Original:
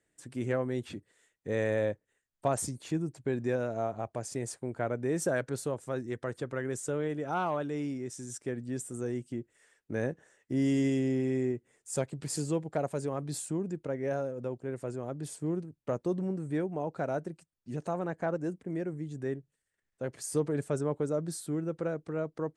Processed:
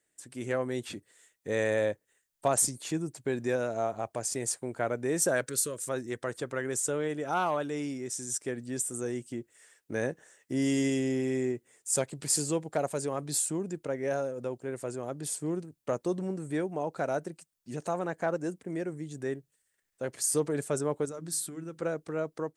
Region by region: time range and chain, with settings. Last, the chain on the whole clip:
5.47–5.89 s: treble shelf 4 kHz +9.5 dB + compression 1.5:1, threshold -38 dBFS + Butterworth band-stop 800 Hz, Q 1.7
21.05–21.82 s: peaking EQ 610 Hz -9.5 dB 0.91 oct + compression 3:1, threshold -36 dBFS + hum notches 50/100/150/200/250/300 Hz
whole clip: bass shelf 230 Hz -8 dB; level rider gain up to 5 dB; treble shelf 5 kHz +9.5 dB; trim -2 dB

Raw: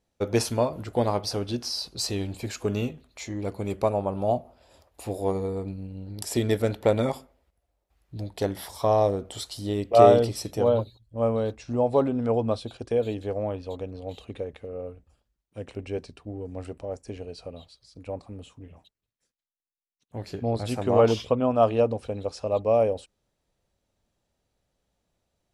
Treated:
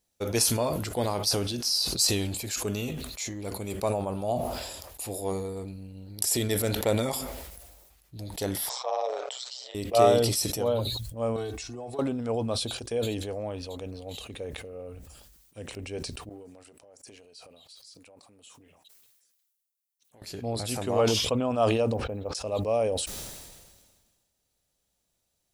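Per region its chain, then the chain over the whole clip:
8.69–9.75 s: Chebyshev band-pass 520–7700 Hz, order 5 + distance through air 90 m + ring modulator 63 Hz
11.36–11.99 s: comb 2.7 ms, depth 97% + compression 8:1, threshold -30 dBFS
16.29–20.22 s: high-pass 420 Hz 6 dB/octave + compression 3:1, threshold -51 dBFS
21.94–22.35 s: low-pass 1.6 kHz + short-mantissa float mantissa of 8-bit
whole clip: pre-emphasis filter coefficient 0.8; decay stretcher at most 36 dB/s; trim +8 dB

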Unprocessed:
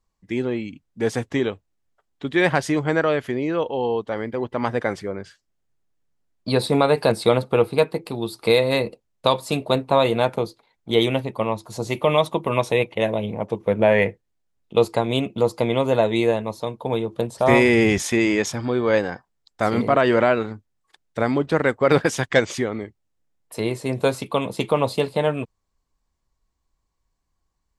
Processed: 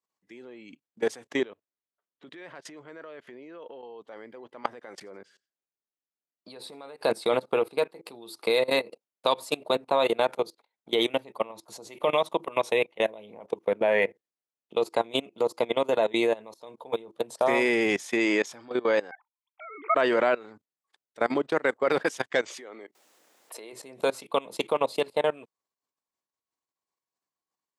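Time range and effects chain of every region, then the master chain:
1.44–3.83 s: treble shelf 6.8 kHz -12 dB + band-stop 800 Hz, Q 8 + compression 5:1, threshold -31 dBFS
4.73–7.00 s: compression 5:1, threshold -32 dBFS + feedback delay 86 ms, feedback 34%, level -23 dB
19.11–19.95 s: formants replaced by sine waves + high-pass 710 Hz 6 dB/octave + comb 0.9 ms, depth 78%
22.48–23.73 s: high-pass 310 Hz + swell ahead of each attack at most 57 dB/s
whole clip: level held to a coarse grid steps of 21 dB; high-pass 330 Hz 12 dB/octave

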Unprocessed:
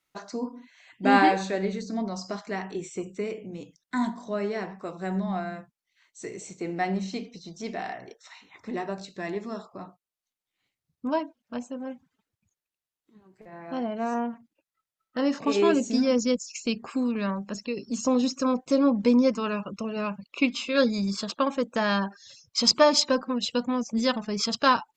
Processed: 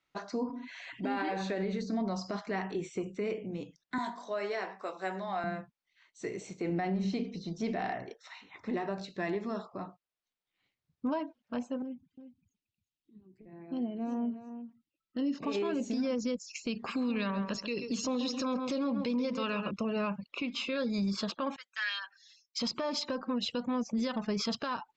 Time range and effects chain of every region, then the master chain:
0.49–1.29 s: comb 7.2 ms, depth 47% + upward compressor, threshold -35 dBFS
3.98–5.44 s: high-pass 500 Hz + treble shelf 6.7 kHz +10 dB + doubling 21 ms -12.5 dB
6.69–8.03 s: bass shelf 400 Hz +7 dB + hum notches 50/100/150/200/250/300/350/400/450/500 Hz
11.82–15.43 s: resonances exaggerated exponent 1.5 + high-order bell 930 Hz -15 dB 2.3 oct + delay 354 ms -11 dB
16.75–19.71 s: peaking EQ 3.6 kHz +9.5 dB 1.6 oct + filtered feedback delay 134 ms, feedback 25%, low-pass 2.3 kHz, level -11 dB
21.56–22.59 s: Chebyshev high-pass 1.7 kHz, order 3 + comb 5.3 ms, depth 57% + three bands expanded up and down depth 70%
whole clip: low-pass 4.5 kHz 12 dB/octave; compression, threshold -25 dBFS; peak limiter -25 dBFS

